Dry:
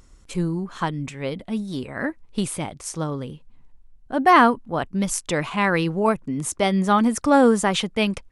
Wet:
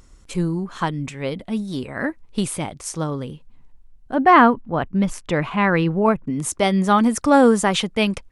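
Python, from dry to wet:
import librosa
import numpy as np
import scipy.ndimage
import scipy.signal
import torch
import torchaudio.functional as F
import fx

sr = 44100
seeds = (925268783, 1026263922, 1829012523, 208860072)

y = fx.bass_treble(x, sr, bass_db=3, treble_db=-14, at=(4.14, 6.3))
y = y * librosa.db_to_amplitude(2.0)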